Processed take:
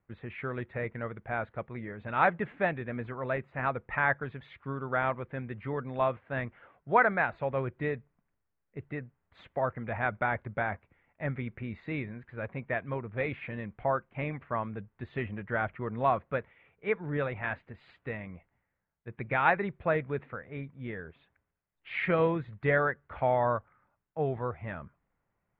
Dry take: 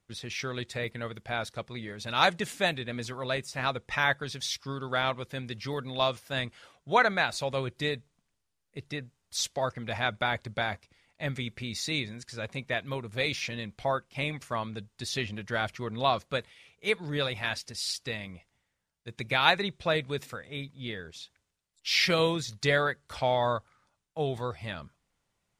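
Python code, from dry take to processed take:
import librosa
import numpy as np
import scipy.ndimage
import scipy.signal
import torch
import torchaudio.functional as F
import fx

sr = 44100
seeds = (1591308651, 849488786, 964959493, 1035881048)

y = scipy.signal.sosfilt(scipy.signal.cheby2(4, 50, 5100.0, 'lowpass', fs=sr, output='sos'), x)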